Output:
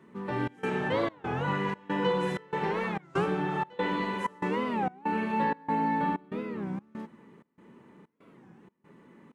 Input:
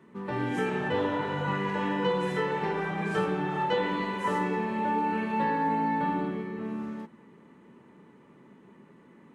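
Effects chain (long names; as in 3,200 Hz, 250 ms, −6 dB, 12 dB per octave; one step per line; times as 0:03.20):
gate pattern "xxx.xxx." 95 BPM −24 dB
wow of a warped record 33 1/3 rpm, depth 250 cents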